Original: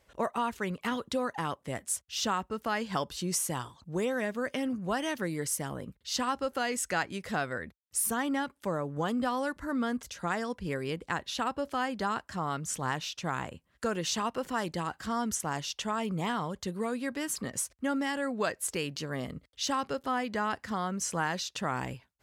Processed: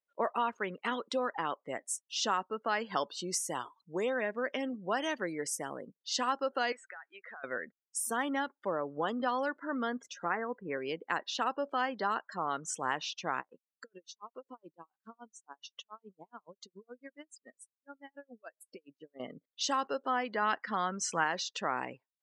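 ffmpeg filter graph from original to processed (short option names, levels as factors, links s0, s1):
-filter_complex "[0:a]asettb=1/sr,asplit=3[s0][s1][s2];[s0]atrim=end=6.724[s3];[s1]atrim=start=6.72:end=7.44,asetpts=PTS-STARTPTS,afade=t=in:d=0.004:c=qsin,afade=t=out:st=0.716:d=0.004:c=qsin,bandpass=f=1500:t=q:w=1.1,acompressor=threshold=0.00891:ratio=12:attack=3.2:release=140:knee=1:detection=peak[s4];[s2]atrim=start=7.436[s5];[s3][s4]acrossfade=d=0.004:c1=hsin:c2=qsin[s6];[s6][s5]acrossfade=d=0.004:c1=qsin:c2=hsin,asettb=1/sr,asplit=3[s7][s8][s9];[s7]atrim=end=10.254[s10];[s8]atrim=start=10.25:end=10.77,asetpts=PTS-STARTPTS,afade=t=in:d=0.004:c=qsin,afade=t=out:st=0.516:d=0.004:c=qsin,lowpass=f=2400:w=0.5412,lowpass=f=2400:w=1.3066,bandreject=f=620:w=8.3[s11];[s9]atrim=start=10.766[s12];[s10][s11]acrossfade=d=0.004:c1=hsin:c2=qsin[s13];[s13][s12]acrossfade=d=0.004:c1=qsin:c2=hsin,asettb=1/sr,asplit=3[s14][s15][s16];[s14]atrim=end=13.404[s17];[s15]atrim=start=13.4:end=19.2,asetpts=PTS-STARTPTS,afade=t=in:d=0.004:c=qsin,afade=t=out:st=5.796:d=0.004:c=qsin,acompressor=threshold=0.0126:ratio=8:attack=3.2:release=140:knee=1:detection=peak,aeval=exprs='val(0)*pow(10,-28*(0.5-0.5*cos(2*PI*7.1*n/s))/20)':c=same[s18];[s16]atrim=start=19.196[s19];[s17][s18]acrossfade=d=0.004:c1=hsin:c2=qsin[s20];[s20][s19]acrossfade=d=0.004:c1=qsin:c2=hsin,asettb=1/sr,asplit=3[s21][s22][s23];[s21]atrim=end=20.424[s24];[s22]atrim=start=20.42:end=21.24,asetpts=PTS-STARTPTS,afade=t=in:d=0.004:c=qsin,afade=t=out:st=0.816:d=0.004:c=qsin,lowpass=f=4000:p=1,equalizer=f=480:w=0.49:g=-6.5,acontrast=50[s25];[s23]atrim=start=21.236[s26];[s24][s25]acrossfade=d=0.004:c1=hsin:c2=qsin[s27];[s27][s26]acrossfade=d=0.004:c1=qsin:c2=hsin,highpass=320,afftdn=nr=30:nf=-45,lowpass=8000"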